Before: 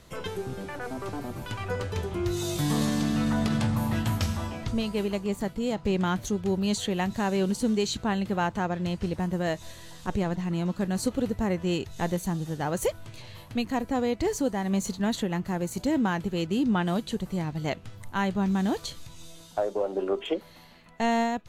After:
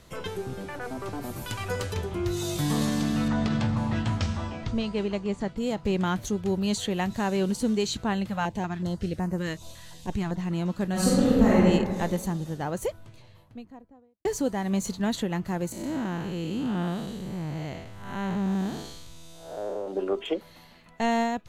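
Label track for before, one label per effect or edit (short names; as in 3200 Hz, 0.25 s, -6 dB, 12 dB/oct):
1.220000	1.930000	high shelf 6100 Hz -> 3500 Hz +11.5 dB
3.280000	5.570000	Bessel low-pass 5500 Hz, order 6
8.270000	10.360000	stepped notch 5.4 Hz 380–3400 Hz
10.910000	11.580000	reverb throw, RT60 1.7 s, DRR -7.5 dB
12.140000	14.250000	studio fade out
15.720000	19.880000	time blur width 0.236 s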